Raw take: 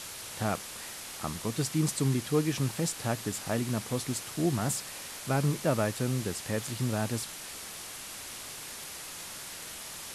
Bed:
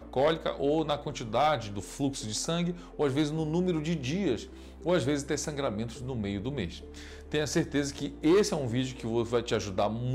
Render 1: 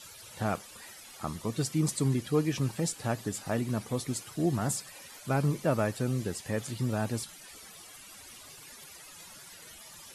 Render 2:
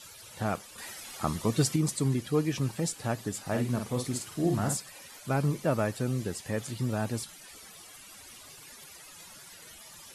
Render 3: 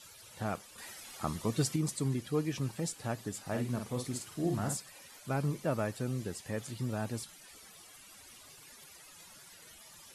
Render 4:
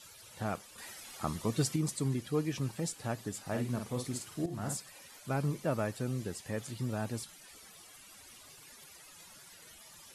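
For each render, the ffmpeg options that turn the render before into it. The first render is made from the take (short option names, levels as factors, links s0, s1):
-af "afftdn=nr=14:nf=-43"
-filter_complex "[0:a]asettb=1/sr,asplit=3[s0][s1][s2];[s0]atrim=end=3.454[s3];[s1]atrim=start=3.45:end=4.77,asetpts=PTS-STARTPTS,afade=t=in:d=0.004:c=qsin,afade=t=out:st=1.316:d=0.004:c=qsin,asplit=2[s4][s5];[s5]adelay=49,volume=0.562[s6];[s4][s6]amix=inputs=2:normalize=0,atrim=end_sample=58212[s7];[s2]atrim=start=4.766[s8];[s3][s7]acrossfade=d=0.004:c1=hsin:c2=qsin[s9];[s9][s8]acrossfade=d=0.004:c1=qsin:c2=hsin,asplit=3[s10][s11][s12];[s10]atrim=end=0.782[s13];[s11]atrim=start=0.778:end=1.762,asetpts=PTS-STARTPTS,volume=1.88[s14];[s12]atrim=start=1.758[s15];[s13][s14]acrossfade=d=0.004:c1=hsin:c2=hsin[s16];[s16][s15]acrossfade=d=0.004:c1=hsin:c2=hsin"
-af "volume=0.562"
-filter_complex "[0:a]asplit=2[s0][s1];[s0]atrim=end=4.46,asetpts=PTS-STARTPTS,afade=t=out:st=4.456:d=0.004:c=hsin:silence=0.223872[s2];[s1]atrim=start=4.46,asetpts=PTS-STARTPTS,afade=t=in:d=0.43:c=qsin:silence=0.223872[s3];[s2][s3]concat=n=2:v=0:a=1"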